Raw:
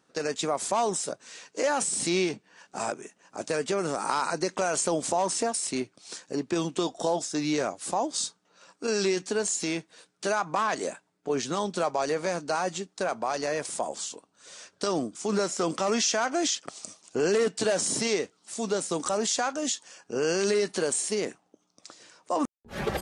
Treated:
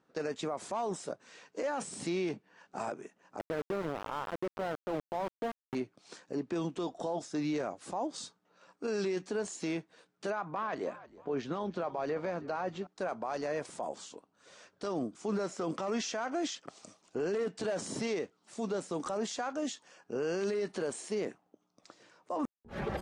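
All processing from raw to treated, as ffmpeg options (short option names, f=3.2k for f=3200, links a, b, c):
-filter_complex "[0:a]asettb=1/sr,asplit=3[a][b][c];[a]atrim=end=3.394[d];[b]atrim=start=3.39:end=5.75,asetpts=PTS-STARTPTS,afade=t=in:d=0.004:c=qsin,afade=t=out:st=2.356:d=0.004:c=qsin,lowpass=1.2k,bandreject=f=60:t=h:w=6,bandreject=f=120:t=h:w=6,bandreject=f=180:t=h:w=6,bandreject=f=240:t=h:w=6,aeval=exprs='val(0)*gte(abs(val(0)),0.0398)':c=same[e];[c]atrim=start=5.746[f];[d][e]acrossfade=d=0.004:c1=hsin:c2=qsin[g];[g][f]acrossfade=d=0.004:c1=qsin:c2=hsin,asettb=1/sr,asplit=3[h][i][j];[h]atrim=end=10.304[k];[i]atrim=start=10.3:end=12.87,asetpts=PTS-STARTPTS,afade=t=in:d=0.004:c=qsin,afade=t=out:st=2.566:d=0.004:c=qsin,lowpass=4.1k,asplit=4[l][m][n][o];[m]adelay=317,afreqshift=-54,volume=-21dB[p];[n]adelay=634,afreqshift=-108,volume=-29.4dB[q];[o]adelay=951,afreqshift=-162,volume=-37.8dB[r];[l][p][q][r]amix=inputs=4:normalize=0,atrim=end_sample=113337[s];[j]atrim=start=12.866[t];[k][s]acrossfade=d=0.004:c1=hsin:c2=qsin[u];[u][t]acrossfade=d=0.004:c1=qsin:c2=hsin,lowpass=f=1.7k:p=1,alimiter=limit=-23dB:level=0:latency=1:release=24,volume=-3dB"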